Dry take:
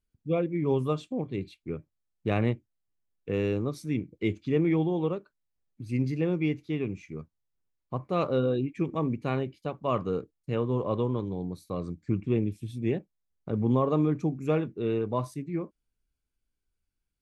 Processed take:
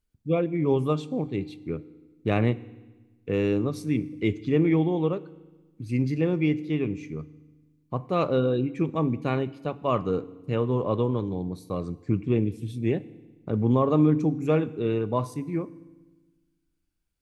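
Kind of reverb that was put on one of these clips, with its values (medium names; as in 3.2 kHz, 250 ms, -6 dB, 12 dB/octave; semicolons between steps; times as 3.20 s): FDN reverb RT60 1.2 s, low-frequency decay 1.4×, high-frequency decay 1×, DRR 16.5 dB; trim +3 dB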